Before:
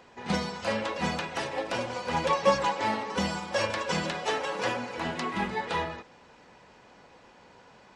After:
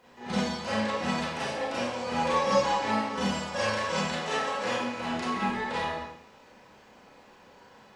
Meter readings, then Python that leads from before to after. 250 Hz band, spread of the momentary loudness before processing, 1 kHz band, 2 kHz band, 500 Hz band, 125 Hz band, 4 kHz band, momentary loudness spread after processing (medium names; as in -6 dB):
+2.5 dB, 7 LU, +0.5 dB, 0.0 dB, 0.0 dB, -0.5 dB, +0.5 dB, 7 LU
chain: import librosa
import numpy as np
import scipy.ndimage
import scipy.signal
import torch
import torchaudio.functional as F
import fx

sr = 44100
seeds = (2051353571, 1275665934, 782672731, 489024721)

y = fx.rev_schroeder(x, sr, rt60_s=0.68, comb_ms=29, drr_db=-8.0)
y = fx.quant_dither(y, sr, seeds[0], bits=12, dither='triangular')
y = F.gain(torch.from_numpy(y), -8.0).numpy()